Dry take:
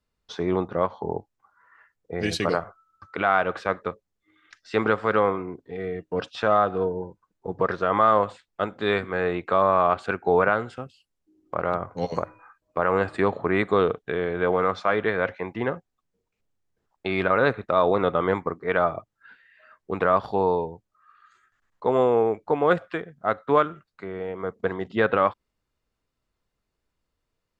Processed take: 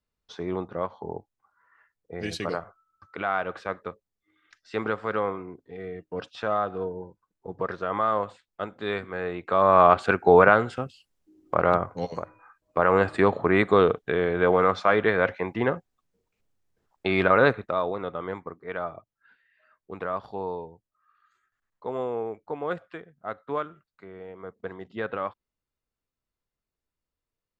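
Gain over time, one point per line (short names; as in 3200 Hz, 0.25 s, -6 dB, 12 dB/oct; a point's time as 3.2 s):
9.37 s -6 dB
9.81 s +4.5 dB
11.76 s +4.5 dB
12.16 s -6.5 dB
12.8 s +2 dB
17.44 s +2 dB
17.96 s -10 dB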